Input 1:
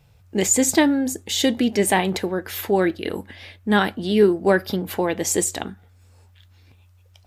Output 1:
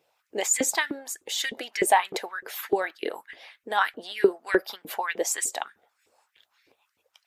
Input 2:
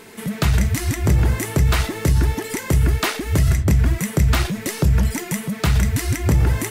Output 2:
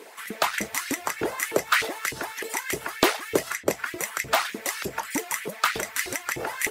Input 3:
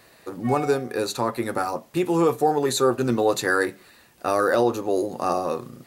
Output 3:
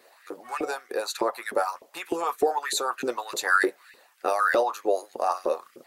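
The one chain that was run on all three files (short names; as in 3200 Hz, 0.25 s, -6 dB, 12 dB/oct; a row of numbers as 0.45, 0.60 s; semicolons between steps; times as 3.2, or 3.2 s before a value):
LFO high-pass saw up 3.3 Hz 360–2200 Hz; harmonic-percussive split harmonic -11 dB; match loudness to -27 LUFS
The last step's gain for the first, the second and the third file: -4.0, 0.0, -1.5 dB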